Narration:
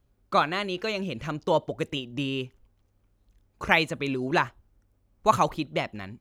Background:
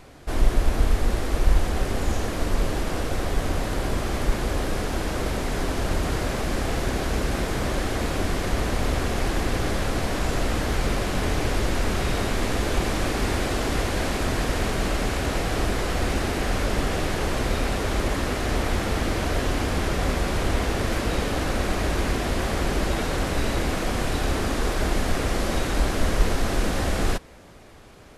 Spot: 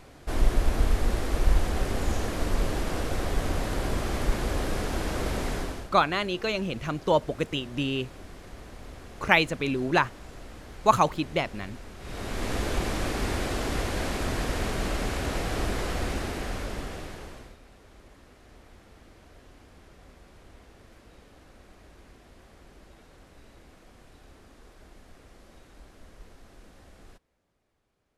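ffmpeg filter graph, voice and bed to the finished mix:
-filter_complex "[0:a]adelay=5600,volume=1dB[a];[1:a]volume=12.5dB,afade=t=out:st=5.48:d=0.42:silence=0.141254,afade=t=in:st=11.99:d=0.56:silence=0.16788,afade=t=out:st=15.85:d=1.72:silence=0.0630957[b];[a][b]amix=inputs=2:normalize=0"

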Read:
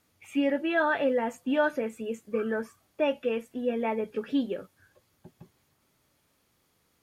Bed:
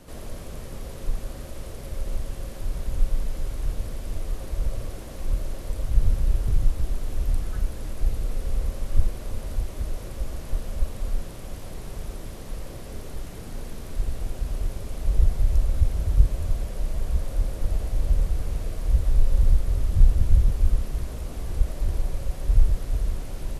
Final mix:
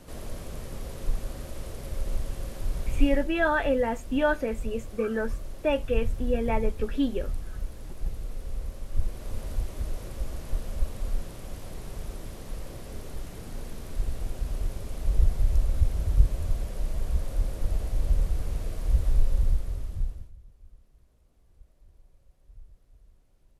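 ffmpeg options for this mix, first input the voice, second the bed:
-filter_complex "[0:a]adelay=2650,volume=1dB[a];[1:a]volume=4.5dB,afade=t=out:st=3.01:d=0.27:silence=0.446684,afade=t=in:st=8.91:d=0.46:silence=0.530884,afade=t=out:st=19.12:d=1.2:silence=0.0354813[b];[a][b]amix=inputs=2:normalize=0"

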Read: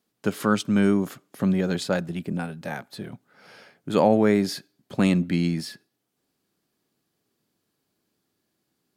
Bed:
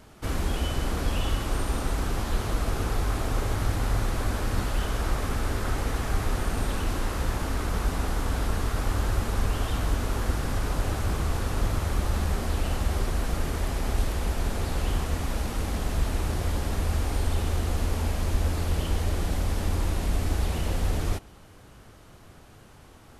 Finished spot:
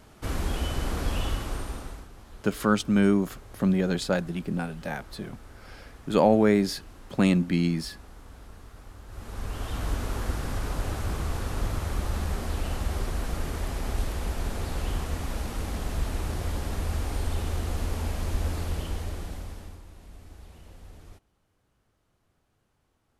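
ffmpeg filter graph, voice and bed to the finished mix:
-filter_complex "[0:a]adelay=2200,volume=-1dB[a];[1:a]volume=15.5dB,afade=t=out:st=1.22:d=0.86:silence=0.11885,afade=t=in:st=9.07:d=0.83:silence=0.141254,afade=t=out:st=18.55:d=1.27:silence=0.11885[b];[a][b]amix=inputs=2:normalize=0"

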